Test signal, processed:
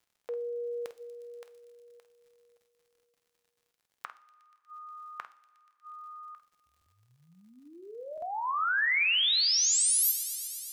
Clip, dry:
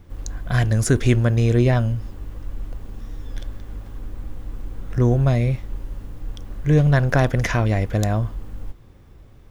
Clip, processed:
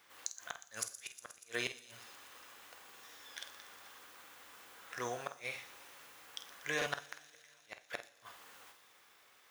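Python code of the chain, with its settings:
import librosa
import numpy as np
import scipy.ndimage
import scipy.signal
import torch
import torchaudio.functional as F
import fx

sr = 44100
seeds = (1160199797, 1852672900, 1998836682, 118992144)

p1 = scipy.signal.sosfilt(scipy.signal.butter(2, 1300.0, 'highpass', fs=sr, output='sos'), x)
p2 = fx.dmg_crackle(p1, sr, seeds[0], per_s=100.0, level_db=-58.0)
p3 = fx.gate_flip(p2, sr, shuts_db=-22.0, range_db=-41)
p4 = fx.doubler(p3, sr, ms=49.0, db=-11)
p5 = p4 + fx.echo_wet_highpass(p4, sr, ms=120, feedback_pct=81, hz=4700.0, wet_db=-12, dry=0)
p6 = fx.rev_double_slope(p5, sr, seeds[1], early_s=0.44, late_s=2.6, knee_db=-18, drr_db=11.0)
y = fx.buffer_glitch(p6, sr, at_s=(2.94, 6.77, 8.13), block=2048, repeats=1)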